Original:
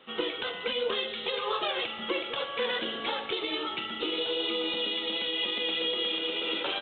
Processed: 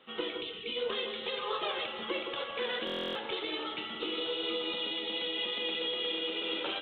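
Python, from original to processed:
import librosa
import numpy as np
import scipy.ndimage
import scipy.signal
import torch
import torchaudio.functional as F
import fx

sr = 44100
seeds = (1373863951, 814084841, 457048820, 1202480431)

p1 = fx.spec_erase(x, sr, start_s=0.41, length_s=0.35, low_hz=490.0, high_hz=2100.0)
p2 = p1 + fx.echo_alternate(p1, sr, ms=167, hz=1400.0, feedback_pct=65, wet_db=-6.5, dry=0)
p3 = fx.buffer_glitch(p2, sr, at_s=(2.85,), block=1024, repeats=12)
y = p3 * librosa.db_to_amplitude(-4.5)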